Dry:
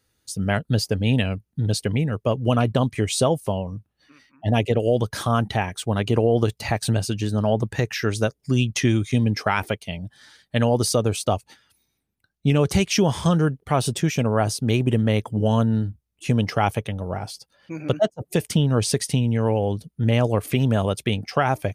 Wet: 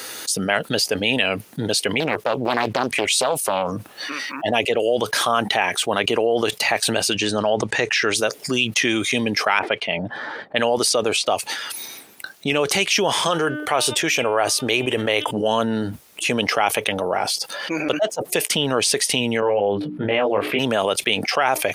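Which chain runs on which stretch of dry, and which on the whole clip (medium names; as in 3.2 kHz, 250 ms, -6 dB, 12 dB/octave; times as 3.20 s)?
2.00–3.72 s: compression 3:1, threshold -21 dBFS + loudspeaker Doppler distortion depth 0.73 ms
7.15–8.14 s: low-pass 8.9 kHz 24 dB/octave + bass shelf 62 Hz +11.5 dB
9.59–11.26 s: band-stop 6.3 kHz, Q 26 + level-controlled noise filter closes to 680 Hz, open at -16.5 dBFS
13.27–15.31 s: peaking EQ 200 Hz -13 dB 0.41 oct + de-hum 301.2 Hz, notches 12
19.40–20.59 s: distance through air 440 m + hum notches 60/120/180/240/300/360/420 Hz + doubling 20 ms -3 dB
whole clip: high-pass 450 Hz 12 dB/octave; dynamic bell 2.6 kHz, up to +5 dB, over -44 dBFS, Q 1.3; level flattener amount 70%; trim -1 dB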